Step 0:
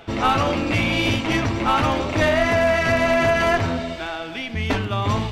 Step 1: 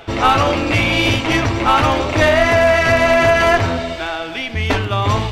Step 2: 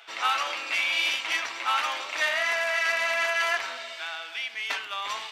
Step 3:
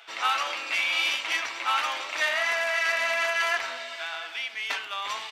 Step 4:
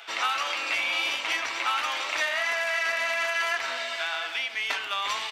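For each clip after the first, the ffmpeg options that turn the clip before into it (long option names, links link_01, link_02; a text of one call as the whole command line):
ffmpeg -i in.wav -af "equalizer=frequency=200:width=2:gain=-7.5,volume=6dB" out.wav
ffmpeg -i in.wav -af "highpass=1400,volume=-7dB" out.wav
ffmpeg -i in.wav -filter_complex "[0:a]asplit=2[link_01][link_02];[link_02]adelay=699.7,volume=-14dB,highshelf=frequency=4000:gain=-15.7[link_03];[link_01][link_03]amix=inputs=2:normalize=0" out.wav
ffmpeg -i in.wav -filter_complex "[0:a]acrossover=split=500|1100[link_01][link_02][link_03];[link_01]acompressor=threshold=-52dB:ratio=4[link_04];[link_02]acompressor=threshold=-43dB:ratio=4[link_05];[link_03]acompressor=threshold=-32dB:ratio=4[link_06];[link_04][link_05][link_06]amix=inputs=3:normalize=0,volume=5.5dB" out.wav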